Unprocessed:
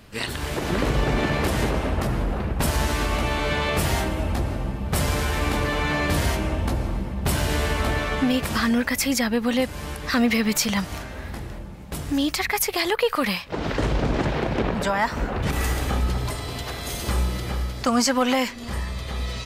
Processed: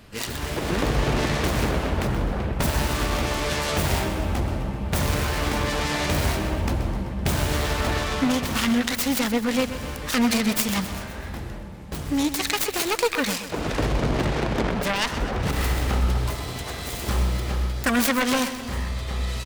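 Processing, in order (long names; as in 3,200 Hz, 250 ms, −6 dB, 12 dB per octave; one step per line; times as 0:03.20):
phase distortion by the signal itself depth 0.42 ms
repeating echo 128 ms, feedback 55%, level −12 dB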